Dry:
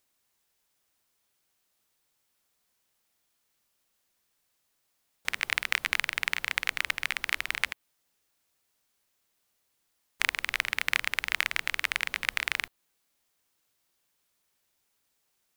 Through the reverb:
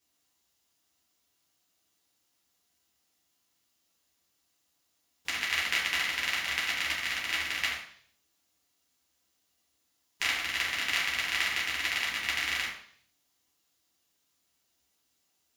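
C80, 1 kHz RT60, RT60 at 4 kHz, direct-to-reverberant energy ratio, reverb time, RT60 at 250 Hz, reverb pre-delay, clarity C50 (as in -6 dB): 7.5 dB, 0.55 s, 0.65 s, -7.0 dB, 0.60 s, 0.65 s, 3 ms, 3.5 dB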